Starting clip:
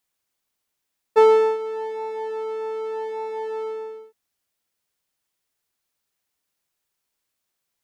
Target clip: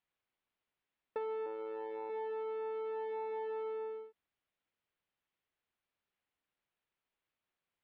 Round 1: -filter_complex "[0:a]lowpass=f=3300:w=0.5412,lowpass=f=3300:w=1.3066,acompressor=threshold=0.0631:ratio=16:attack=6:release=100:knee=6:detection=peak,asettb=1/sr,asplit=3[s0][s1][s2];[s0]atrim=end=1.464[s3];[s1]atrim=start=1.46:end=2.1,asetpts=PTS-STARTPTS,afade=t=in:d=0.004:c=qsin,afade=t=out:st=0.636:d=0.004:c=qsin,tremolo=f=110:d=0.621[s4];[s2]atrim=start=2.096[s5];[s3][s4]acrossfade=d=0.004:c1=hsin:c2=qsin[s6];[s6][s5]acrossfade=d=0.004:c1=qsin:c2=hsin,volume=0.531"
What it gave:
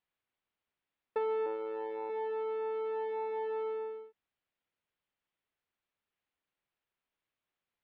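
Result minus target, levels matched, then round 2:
compression: peak gain reduction -6 dB
-filter_complex "[0:a]lowpass=f=3300:w=0.5412,lowpass=f=3300:w=1.3066,acompressor=threshold=0.0299:ratio=16:attack=6:release=100:knee=6:detection=peak,asettb=1/sr,asplit=3[s0][s1][s2];[s0]atrim=end=1.464[s3];[s1]atrim=start=1.46:end=2.1,asetpts=PTS-STARTPTS,afade=t=in:d=0.004:c=qsin,afade=t=out:st=0.636:d=0.004:c=qsin,tremolo=f=110:d=0.621[s4];[s2]atrim=start=2.096[s5];[s3][s4]acrossfade=d=0.004:c1=hsin:c2=qsin[s6];[s6][s5]acrossfade=d=0.004:c1=qsin:c2=hsin,volume=0.531"

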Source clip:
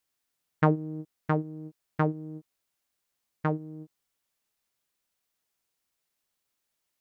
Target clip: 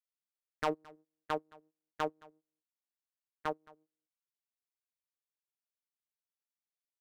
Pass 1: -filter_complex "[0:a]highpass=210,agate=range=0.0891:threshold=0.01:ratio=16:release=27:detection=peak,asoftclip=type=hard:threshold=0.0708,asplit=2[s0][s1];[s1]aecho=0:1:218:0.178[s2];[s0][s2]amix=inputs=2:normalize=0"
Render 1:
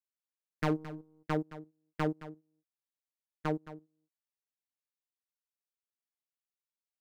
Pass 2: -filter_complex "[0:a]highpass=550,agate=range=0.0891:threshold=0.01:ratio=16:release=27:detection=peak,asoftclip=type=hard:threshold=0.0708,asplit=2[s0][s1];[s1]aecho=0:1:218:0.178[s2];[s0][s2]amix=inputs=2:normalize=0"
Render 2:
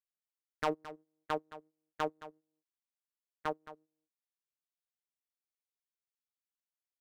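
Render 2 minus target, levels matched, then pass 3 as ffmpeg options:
echo-to-direct +8.5 dB
-filter_complex "[0:a]highpass=550,agate=range=0.0891:threshold=0.01:ratio=16:release=27:detection=peak,asoftclip=type=hard:threshold=0.0708,asplit=2[s0][s1];[s1]aecho=0:1:218:0.0668[s2];[s0][s2]amix=inputs=2:normalize=0"

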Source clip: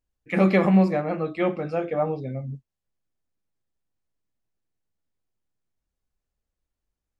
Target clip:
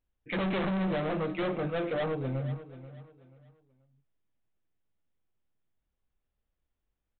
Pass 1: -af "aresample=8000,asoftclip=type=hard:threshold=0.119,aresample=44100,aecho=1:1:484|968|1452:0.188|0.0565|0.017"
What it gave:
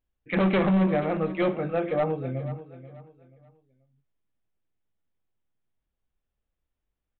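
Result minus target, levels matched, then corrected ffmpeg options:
hard clipper: distortion -6 dB
-af "aresample=8000,asoftclip=type=hard:threshold=0.0376,aresample=44100,aecho=1:1:484|968|1452:0.188|0.0565|0.017"

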